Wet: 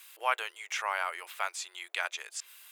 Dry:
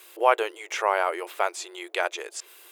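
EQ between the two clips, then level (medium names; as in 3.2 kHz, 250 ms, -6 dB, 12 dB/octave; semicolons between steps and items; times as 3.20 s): high-pass 1.3 kHz 12 dB/octave; -2.5 dB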